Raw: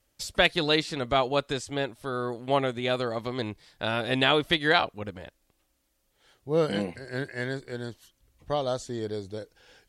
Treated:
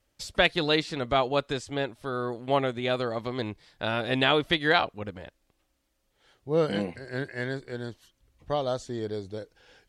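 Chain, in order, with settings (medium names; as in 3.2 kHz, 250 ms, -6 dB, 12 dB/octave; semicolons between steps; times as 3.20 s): treble shelf 7.8 kHz -9 dB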